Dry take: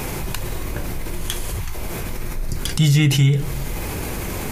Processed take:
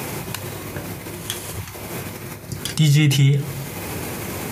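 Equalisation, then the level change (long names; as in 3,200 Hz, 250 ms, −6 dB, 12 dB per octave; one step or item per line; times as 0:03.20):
high-pass filter 90 Hz 24 dB per octave
0.0 dB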